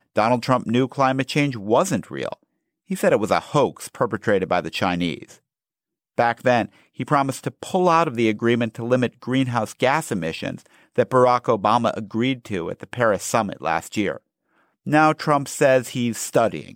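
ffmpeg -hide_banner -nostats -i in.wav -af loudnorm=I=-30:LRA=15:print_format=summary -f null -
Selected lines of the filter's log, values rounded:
Input Integrated:    -21.2 LUFS
Input True Peak:      -5.4 dBTP
Input LRA:             2.0 LU
Input Threshold:     -31.7 LUFS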